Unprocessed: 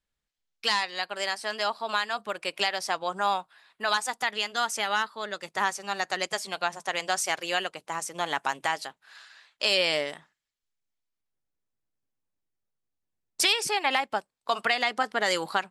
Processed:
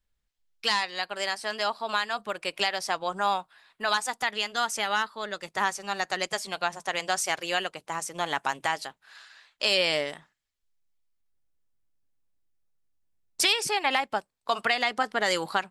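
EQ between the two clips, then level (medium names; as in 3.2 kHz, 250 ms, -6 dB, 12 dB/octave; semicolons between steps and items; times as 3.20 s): bass shelf 78 Hz +12 dB; 0.0 dB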